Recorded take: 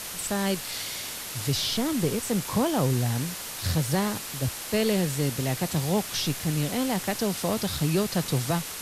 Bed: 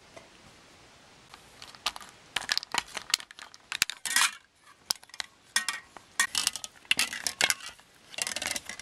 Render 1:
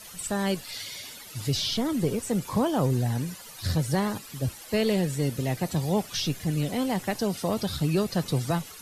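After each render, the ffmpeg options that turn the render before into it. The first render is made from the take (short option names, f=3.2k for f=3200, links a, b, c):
-af "afftdn=nr=14:nf=-37"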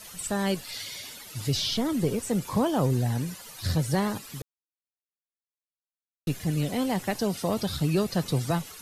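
-filter_complex "[0:a]asplit=3[a][b][c];[a]atrim=end=4.42,asetpts=PTS-STARTPTS,afade=t=out:st=4.416:d=0.004:c=hsin[d];[b]atrim=start=4.42:end=6.27,asetpts=PTS-STARTPTS,volume=0[e];[c]atrim=start=6.27,asetpts=PTS-STARTPTS,afade=t=in:d=0.004:c=hsin[f];[d][e][f]concat=n=3:v=0:a=1"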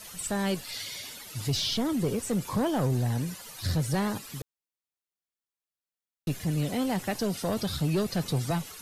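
-af "asoftclip=type=tanh:threshold=-19.5dB"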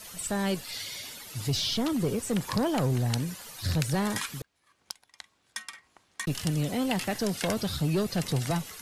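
-filter_complex "[1:a]volume=-10.5dB[a];[0:a][a]amix=inputs=2:normalize=0"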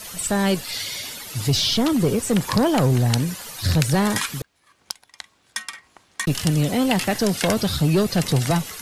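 -af "volume=8.5dB"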